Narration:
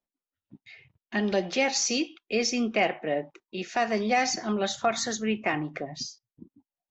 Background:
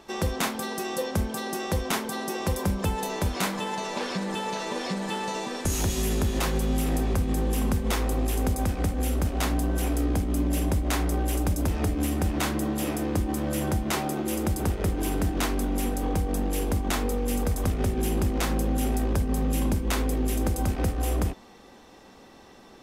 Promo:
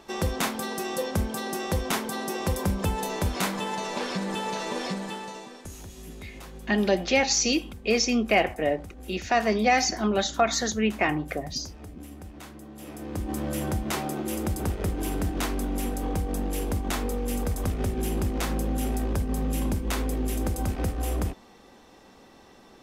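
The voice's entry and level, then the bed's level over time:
5.55 s, +3.0 dB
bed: 4.86 s 0 dB
5.83 s -17 dB
12.69 s -17 dB
13.35 s -2 dB

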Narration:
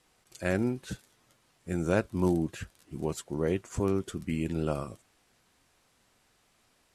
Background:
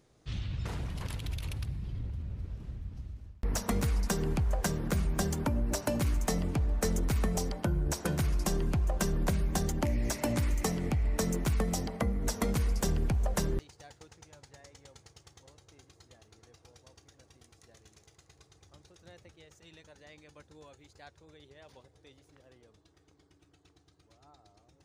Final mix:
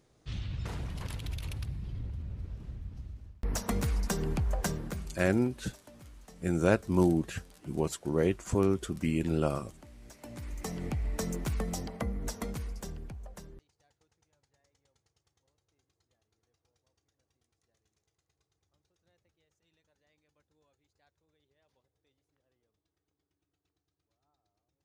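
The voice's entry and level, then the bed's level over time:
4.75 s, +1.5 dB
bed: 4.70 s -1 dB
5.49 s -23 dB
9.96 s -23 dB
10.82 s -3.5 dB
12.18 s -3.5 dB
13.56 s -19.5 dB

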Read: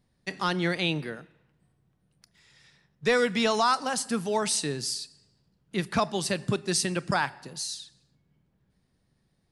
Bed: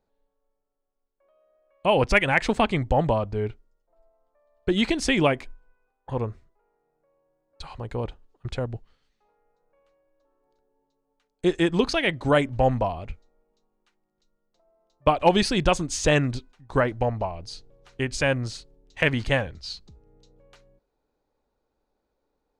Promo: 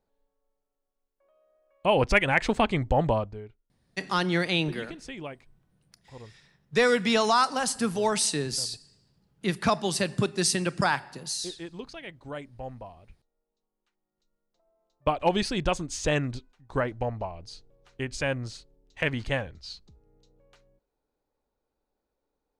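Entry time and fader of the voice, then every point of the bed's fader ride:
3.70 s, +1.5 dB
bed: 3.19 s -2 dB
3.48 s -18 dB
13.03 s -18 dB
14.34 s -5.5 dB

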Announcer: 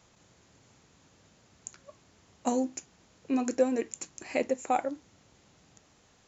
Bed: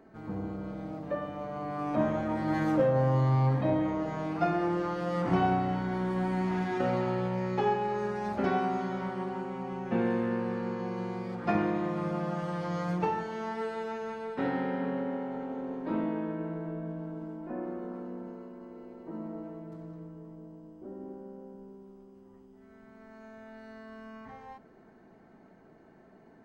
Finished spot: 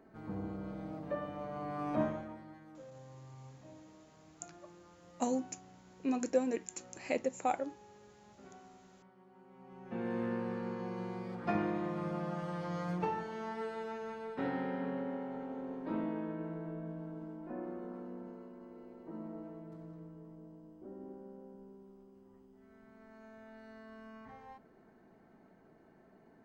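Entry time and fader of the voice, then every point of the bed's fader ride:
2.75 s, -5.0 dB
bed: 2.02 s -4.5 dB
2.61 s -27.5 dB
9.24 s -27.5 dB
10.23 s -5.5 dB

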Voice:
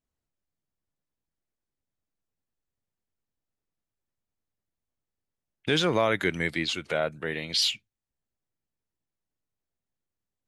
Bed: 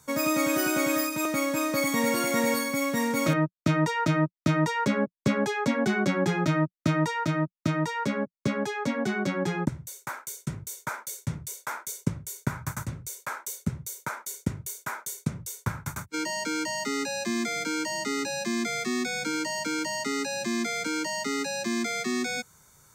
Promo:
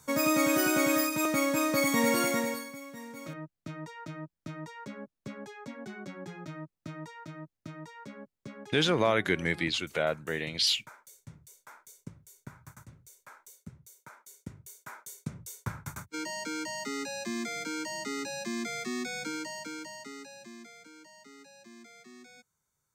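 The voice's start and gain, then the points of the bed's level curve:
3.05 s, -1.5 dB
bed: 2.25 s -0.5 dB
2.82 s -17.5 dB
14.09 s -17.5 dB
15.59 s -6 dB
19.26 s -6 dB
20.92 s -23.5 dB

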